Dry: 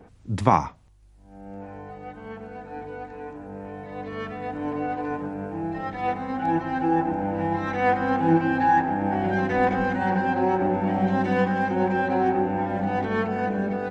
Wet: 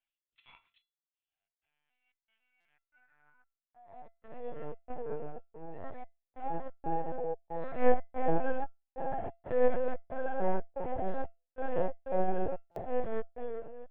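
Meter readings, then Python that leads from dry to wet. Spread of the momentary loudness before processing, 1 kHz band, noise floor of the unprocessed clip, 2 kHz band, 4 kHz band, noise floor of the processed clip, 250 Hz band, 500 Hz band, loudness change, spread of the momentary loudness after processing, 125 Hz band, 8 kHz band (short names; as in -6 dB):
17 LU, -14.5 dB, -51 dBFS, -18.0 dB, under -15 dB, under -85 dBFS, -17.5 dB, -6.5 dB, -11.5 dB, 17 LU, -17.0 dB, n/a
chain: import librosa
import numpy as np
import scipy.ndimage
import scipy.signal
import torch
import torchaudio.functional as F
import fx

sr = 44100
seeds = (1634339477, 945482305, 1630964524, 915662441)

y = fx.fade_out_tail(x, sr, length_s=0.88)
y = fx.filter_sweep_highpass(y, sr, from_hz=2900.0, to_hz=490.0, start_s=2.35, end_s=4.29, q=4.0)
y = fx.low_shelf(y, sr, hz=370.0, db=3.5)
y = y + 10.0 ** (-5.5 / 20.0) * np.pad(y, (int(377 * sr / 1000.0), 0))[:len(y)]
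y = fx.step_gate(y, sr, bpm=92, pattern='x.xxx..xx.xxx.xx', floor_db=-60.0, edge_ms=4.5)
y = fx.low_shelf(y, sr, hz=170.0, db=11.5)
y = fx.lpc_vocoder(y, sr, seeds[0], excitation='pitch_kept', order=10)
y = fx.comb_fb(y, sr, f0_hz=680.0, decay_s=0.29, harmonics='all', damping=0.0, mix_pct=80)
y = fx.buffer_glitch(y, sr, at_s=(2.6, 12.71), block=256, repeats=8)
y = fx.upward_expand(y, sr, threshold_db=-48.0, expansion=1.5)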